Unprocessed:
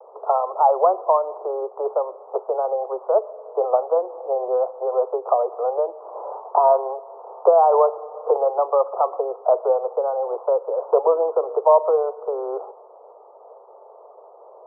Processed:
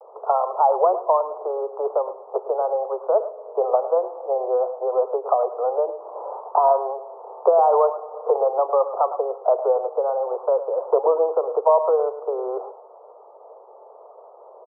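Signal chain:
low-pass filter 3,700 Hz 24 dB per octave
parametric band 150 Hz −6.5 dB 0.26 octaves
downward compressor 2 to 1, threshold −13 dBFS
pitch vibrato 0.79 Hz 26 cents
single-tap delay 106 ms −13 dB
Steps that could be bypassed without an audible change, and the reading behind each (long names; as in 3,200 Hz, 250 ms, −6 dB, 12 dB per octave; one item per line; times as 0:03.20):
low-pass filter 3,700 Hz: nothing at its input above 1,400 Hz
parametric band 150 Hz: nothing at its input below 320 Hz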